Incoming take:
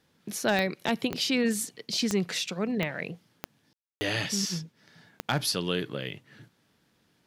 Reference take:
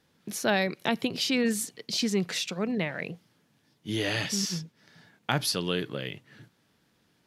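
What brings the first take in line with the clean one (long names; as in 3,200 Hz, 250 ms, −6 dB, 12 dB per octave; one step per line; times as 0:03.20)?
clipped peaks rebuilt −14.5 dBFS
click removal
ambience match 0:03.73–0:04.01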